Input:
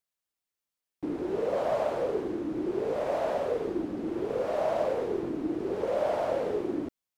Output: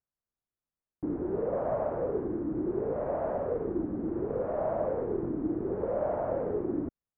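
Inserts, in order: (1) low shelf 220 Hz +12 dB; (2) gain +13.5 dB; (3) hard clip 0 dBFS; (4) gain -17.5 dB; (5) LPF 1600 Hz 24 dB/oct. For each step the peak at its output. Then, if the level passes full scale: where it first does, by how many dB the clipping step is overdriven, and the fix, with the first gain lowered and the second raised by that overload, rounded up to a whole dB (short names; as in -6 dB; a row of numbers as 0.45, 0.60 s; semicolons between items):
-15.0, -1.5, -1.5, -19.0, -19.0 dBFS; no overload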